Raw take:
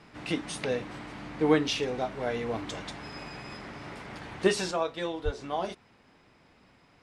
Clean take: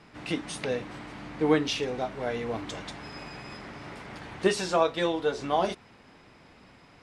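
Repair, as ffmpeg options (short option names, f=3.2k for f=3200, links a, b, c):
-filter_complex "[0:a]asplit=3[a][b][c];[a]afade=t=out:st=5.24:d=0.02[d];[b]highpass=f=140:w=0.5412,highpass=f=140:w=1.3066,afade=t=in:st=5.24:d=0.02,afade=t=out:st=5.36:d=0.02[e];[c]afade=t=in:st=5.36:d=0.02[f];[d][e][f]amix=inputs=3:normalize=0,asetnsamples=n=441:p=0,asendcmd='4.71 volume volume 6dB',volume=0dB"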